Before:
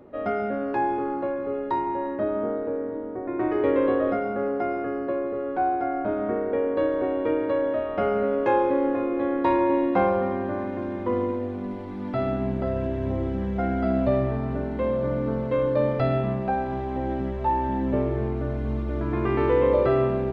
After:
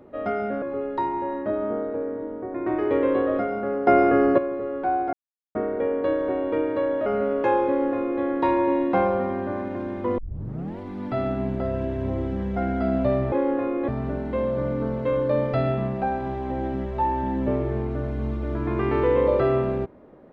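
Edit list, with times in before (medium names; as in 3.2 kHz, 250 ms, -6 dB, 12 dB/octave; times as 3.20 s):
0.62–1.35 s: delete
4.60–5.11 s: gain +10.5 dB
5.86–6.28 s: mute
7.79–8.08 s: delete
8.68–9.24 s: copy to 14.34 s
11.20 s: tape start 0.61 s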